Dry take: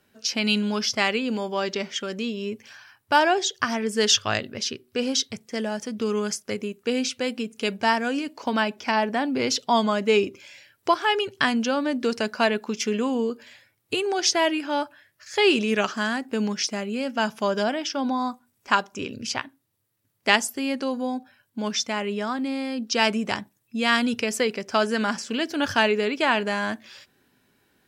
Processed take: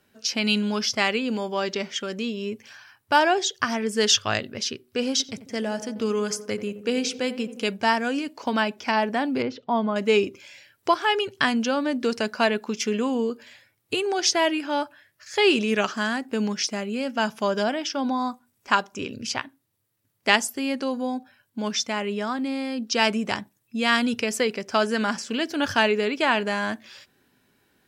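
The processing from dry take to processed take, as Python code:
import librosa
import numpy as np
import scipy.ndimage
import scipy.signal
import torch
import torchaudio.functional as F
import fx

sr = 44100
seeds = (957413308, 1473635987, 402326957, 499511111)

y = fx.echo_filtered(x, sr, ms=88, feedback_pct=70, hz=1100.0, wet_db=-12.0, at=(5.11, 7.64))
y = fx.spacing_loss(y, sr, db_at_10k=43, at=(9.42, 9.96))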